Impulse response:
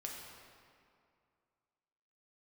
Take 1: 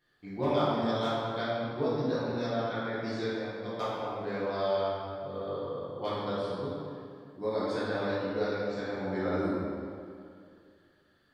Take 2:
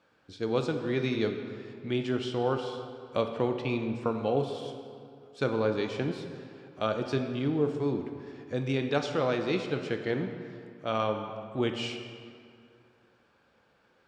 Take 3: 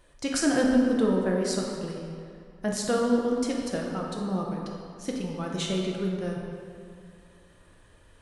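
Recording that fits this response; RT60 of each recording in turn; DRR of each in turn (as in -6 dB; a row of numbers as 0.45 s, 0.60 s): 3; 2.4 s, 2.3 s, 2.4 s; -11.0 dB, 4.5 dB, -1.5 dB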